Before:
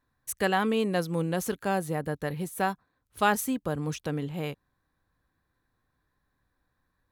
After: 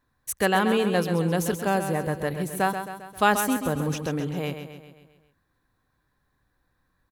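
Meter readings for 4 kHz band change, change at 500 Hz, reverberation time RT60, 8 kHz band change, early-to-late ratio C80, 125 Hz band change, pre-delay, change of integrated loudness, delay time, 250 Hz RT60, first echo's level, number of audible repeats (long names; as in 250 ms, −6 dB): +4.5 dB, +4.5 dB, no reverb audible, +4.5 dB, no reverb audible, +4.5 dB, no reverb audible, +4.0 dB, 133 ms, no reverb audible, −8.5 dB, 5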